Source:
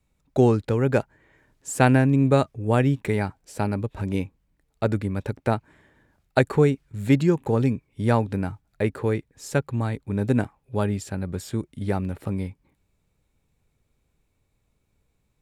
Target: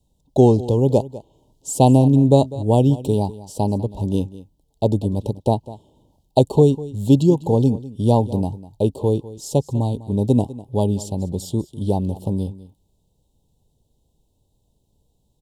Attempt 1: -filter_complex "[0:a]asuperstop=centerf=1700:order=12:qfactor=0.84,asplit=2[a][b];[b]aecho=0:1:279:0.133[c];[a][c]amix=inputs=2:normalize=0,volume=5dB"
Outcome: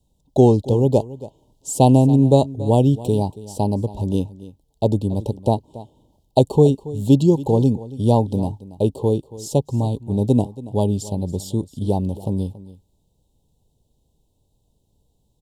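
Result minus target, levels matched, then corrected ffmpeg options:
echo 79 ms late
-filter_complex "[0:a]asuperstop=centerf=1700:order=12:qfactor=0.84,asplit=2[a][b];[b]aecho=0:1:200:0.133[c];[a][c]amix=inputs=2:normalize=0,volume=5dB"

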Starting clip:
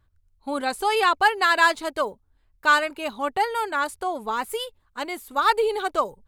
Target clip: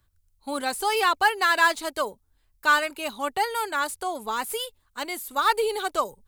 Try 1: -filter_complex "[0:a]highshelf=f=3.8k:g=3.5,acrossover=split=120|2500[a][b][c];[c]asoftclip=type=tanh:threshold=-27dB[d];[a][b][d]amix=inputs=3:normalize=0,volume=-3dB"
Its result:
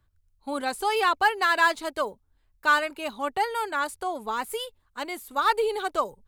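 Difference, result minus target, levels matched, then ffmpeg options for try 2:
8000 Hz band -5.0 dB
-filter_complex "[0:a]highshelf=f=3.8k:g=14,acrossover=split=120|2500[a][b][c];[c]asoftclip=type=tanh:threshold=-27dB[d];[a][b][d]amix=inputs=3:normalize=0,volume=-3dB"

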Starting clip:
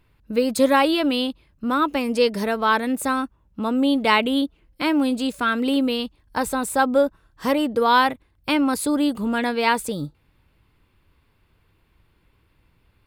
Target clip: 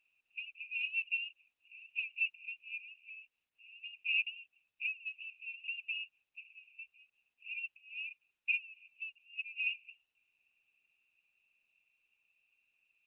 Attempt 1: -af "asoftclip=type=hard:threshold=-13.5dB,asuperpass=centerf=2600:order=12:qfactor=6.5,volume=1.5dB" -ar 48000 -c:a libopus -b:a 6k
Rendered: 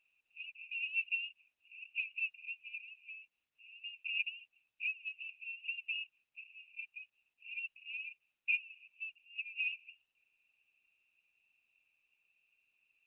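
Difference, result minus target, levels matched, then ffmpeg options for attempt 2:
hard clip: distortion +20 dB
-af "asoftclip=type=hard:threshold=-6.5dB,asuperpass=centerf=2600:order=12:qfactor=6.5,volume=1.5dB" -ar 48000 -c:a libopus -b:a 6k

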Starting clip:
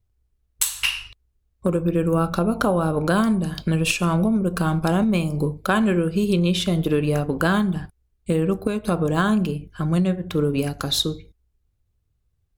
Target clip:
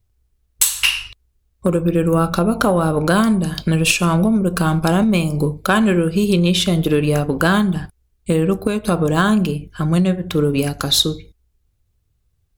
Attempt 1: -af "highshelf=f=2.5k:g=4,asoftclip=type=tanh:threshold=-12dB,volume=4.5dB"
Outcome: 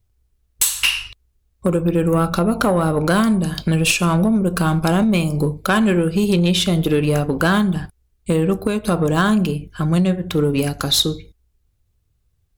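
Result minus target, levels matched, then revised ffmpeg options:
soft clip: distortion +9 dB
-af "highshelf=f=2.5k:g=4,asoftclip=type=tanh:threshold=-5.5dB,volume=4.5dB"

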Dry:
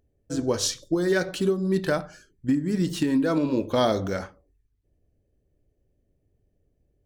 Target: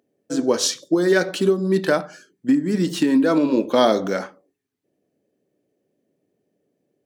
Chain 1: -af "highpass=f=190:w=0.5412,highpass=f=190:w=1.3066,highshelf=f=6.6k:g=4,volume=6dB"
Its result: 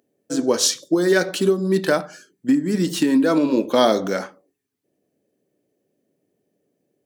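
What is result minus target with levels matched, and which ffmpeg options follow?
8000 Hz band +3.0 dB
-af "highpass=f=190:w=0.5412,highpass=f=190:w=1.3066,highshelf=f=6.6k:g=-3,volume=6dB"

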